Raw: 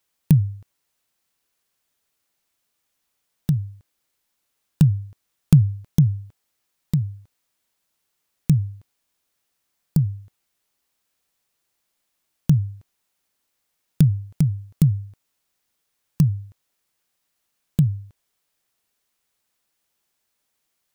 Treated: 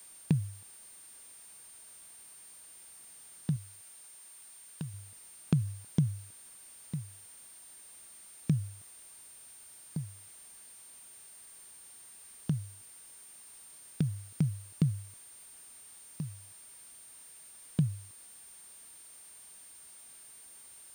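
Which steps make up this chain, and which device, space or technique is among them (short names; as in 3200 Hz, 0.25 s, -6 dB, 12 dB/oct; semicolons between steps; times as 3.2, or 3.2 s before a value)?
medium wave at night (BPF 140–3700 Hz; compressor, threshold -17 dBFS, peak gain reduction 7.5 dB; tremolo 0.34 Hz, depth 71%; whine 9000 Hz -46 dBFS; white noise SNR 20 dB); 3.56–4.94 low shelf 460 Hz -6 dB; gain -5 dB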